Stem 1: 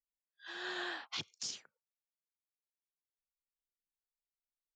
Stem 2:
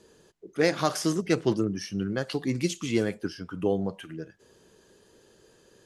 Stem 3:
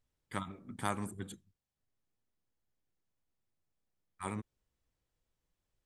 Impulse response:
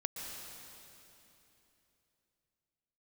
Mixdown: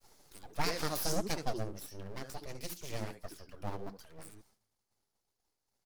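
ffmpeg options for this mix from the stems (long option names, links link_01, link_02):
-filter_complex "[1:a]flanger=delay=0.9:depth=9.5:regen=30:speed=1.5:shape=triangular,volume=-0.5dB,afade=type=out:start_time=1.16:duration=0.49:silence=0.398107,asplit=2[link_01][link_02];[link_02]volume=-12dB[link_03];[2:a]acrossover=split=180|3000[link_04][link_05][link_06];[link_05]acompressor=threshold=-52dB:ratio=5[link_07];[link_04][link_07][link_06]amix=inputs=3:normalize=0,lowshelf=frequency=430:gain=-4,volume=-7dB,asplit=2[link_08][link_09];[link_09]volume=-21.5dB[link_10];[link_01][link_08]amix=inputs=2:normalize=0,aeval=exprs='abs(val(0))':channel_layout=same,alimiter=limit=-20dB:level=0:latency=1:release=295,volume=0dB[link_11];[3:a]atrim=start_sample=2205[link_12];[link_10][link_12]afir=irnorm=-1:irlink=0[link_13];[link_03]aecho=0:1:71:1[link_14];[link_11][link_13][link_14]amix=inputs=3:normalize=0,agate=range=-33dB:threshold=-60dB:ratio=3:detection=peak,aexciter=amount=2.4:drive=3.1:freq=4300"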